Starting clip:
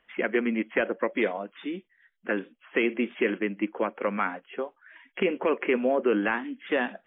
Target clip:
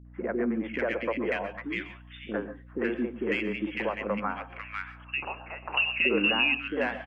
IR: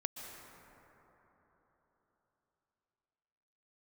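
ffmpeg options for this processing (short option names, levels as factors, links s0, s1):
-filter_complex "[0:a]asplit=2[s0][s1];[s1]asoftclip=type=tanh:threshold=0.0794,volume=0.266[s2];[s0][s2]amix=inputs=2:normalize=0,asettb=1/sr,asplit=3[s3][s4][s5];[s3]atrim=end=4.494[s6];[s4]atrim=start=4.49:end=6,asetpts=PTS-STARTPTS,afade=t=in:d=0.004:c=qsin,afade=t=out:st=1.506:d=0.004:c=qsin,lowpass=f=2600:t=q:w=0.5098,lowpass=f=2600:t=q:w=0.6013,lowpass=f=2600:t=q:w=0.9,lowpass=f=2600:t=q:w=2.563,afreqshift=-3100[s7];[s5]atrim=start=5.996[s8];[s6][s7]acrossfade=d=0.004:c1=hsin:c2=qsin[s9];[s9][s8]acrossfade=d=0.004:c1=qsin:c2=hsin,acrossover=split=370|1500[s10][s11][s12];[s11]adelay=50[s13];[s12]adelay=550[s14];[s10][s13][s14]amix=inputs=3:normalize=0[s15];[1:a]atrim=start_sample=2205,afade=t=out:st=0.19:d=0.01,atrim=end_sample=8820[s16];[s15][s16]afir=irnorm=-1:irlink=0,aeval=exprs='val(0)+0.00398*(sin(2*PI*60*n/s)+sin(2*PI*2*60*n/s)/2+sin(2*PI*3*60*n/s)/3+sin(2*PI*4*60*n/s)/4+sin(2*PI*5*60*n/s)/5)':c=same"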